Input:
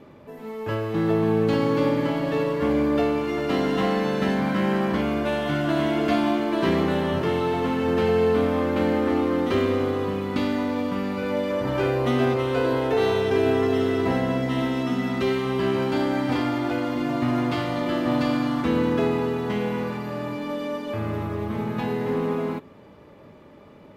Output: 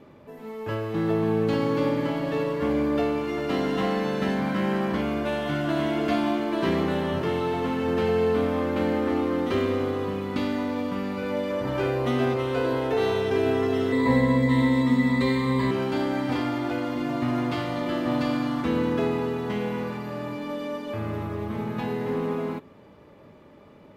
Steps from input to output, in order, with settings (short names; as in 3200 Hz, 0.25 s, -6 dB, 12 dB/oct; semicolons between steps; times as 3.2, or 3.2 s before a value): 13.92–15.71 ripple EQ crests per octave 1, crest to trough 16 dB; gain -2.5 dB